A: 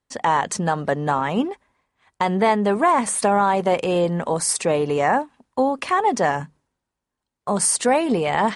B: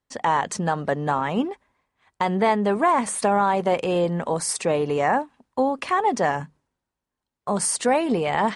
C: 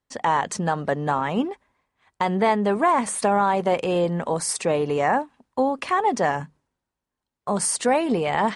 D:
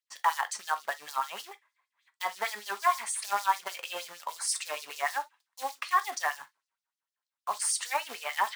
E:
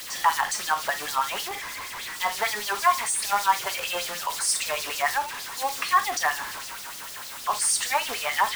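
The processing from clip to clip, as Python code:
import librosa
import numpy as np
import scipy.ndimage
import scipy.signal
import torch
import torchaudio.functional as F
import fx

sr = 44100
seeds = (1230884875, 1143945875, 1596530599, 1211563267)

y1 = fx.high_shelf(x, sr, hz=7700.0, db=-4.5)
y1 = y1 * 10.0 ** (-2.0 / 20.0)
y2 = y1
y3 = fx.quant_float(y2, sr, bits=2)
y3 = fx.filter_lfo_highpass(y3, sr, shape='sine', hz=6.5, low_hz=960.0, high_hz=5300.0, q=2.1)
y3 = fx.rev_gated(y3, sr, seeds[0], gate_ms=80, shape='falling', drr_db=9.5)
y3 = y3 * 10.0 ** (-6.5 / 20.0)
y4 = y3 + 0.5 * 10.0 ** (-33.0 / 20.0) * np.sign(y3)
y4 = y4 * 10.0 ** (4.0 / 20.0)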